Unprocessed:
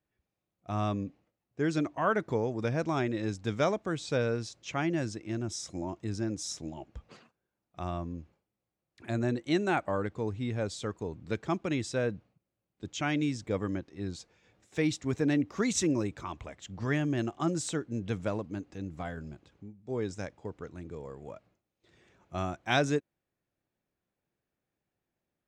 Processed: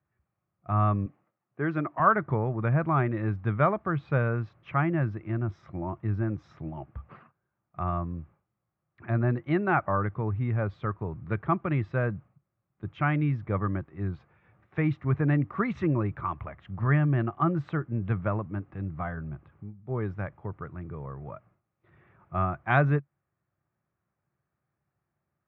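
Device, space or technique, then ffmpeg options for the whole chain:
bass cabinet: -filter_complex "[0:a]highpass=67,equalizer=f=68:t=q:w=4:g=7,equalizer=f=100:t=q:w=4:g=5,equalizer=f=140:t=q:w=4:g=8,equalizer=f=270:t=q:w=4:g=-7,equalizer=f=470:t=q:w=4:g=-7,equalizer=f=1.2k:t=q:w=4:g=8,lowpass=f=2.1k:w=0.5412,lowpass=f=2.1k:w=1.3066,asettb=1/sr,asplit=3[a][b][c];[a]atrim=end=1.064[d];[b]atrim=start=1.06:end=2,asetpts=PTS-STARTPTS,afade=t=in:d=0.004:c=qsin,afade=t=out:st=0.936:d=0.004:c=qsin,highpass=200[e];[c]atrim=start=1.996[f];[d][e]acrossfade=d=0.004:c1=hsin:c2=qsin[g];[g][f]acrossfade=d=0.004:c1=qsin:c2=hsin,volume=3.5dB"

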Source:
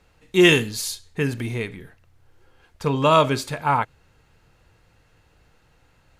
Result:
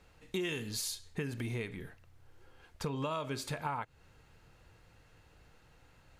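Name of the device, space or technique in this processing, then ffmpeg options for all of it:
serial compression, leveller first: -af "acompressor=threshold=-20dB:ratio=3,acompressor=threshold=-32dB:ratio=4,volume=-3dB"

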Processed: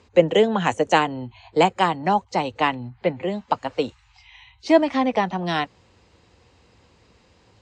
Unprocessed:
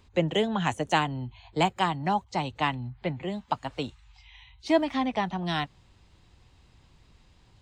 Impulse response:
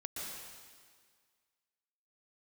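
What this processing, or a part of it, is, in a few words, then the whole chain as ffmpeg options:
car door speaker: -filter_complex "[0:a]highpass=95,equalizer=f=140:t=q:w=4:g=-10,equalizer=f=490:t=q:w=4:g=9,equalizer=f=3.5k:t=q:w=4:g=-5,lowpass=f=7.9k:w=0.5412,lowpass=f=7.9k:w=1.3066,asettb=1/sr,asplit=3[a][b][c];[a]atrim=end=2.574[d];[b]atrim=start=2.57:end=3.83,asetpts=PTS-STARTPTS,afade=t=in:d=0.004:c=qsin,afade=t=out:st=1.256:d=0.004:c=qsin,lowpass=8.7k[e];[c]atrim=start=3.826[f];[d][e]acrossfade=d=0.004:c1=hsin:c2=qsin[g];[g][f]acrossfade=d=0.004:c1=qsin:c2=hsin,volume=6dB"

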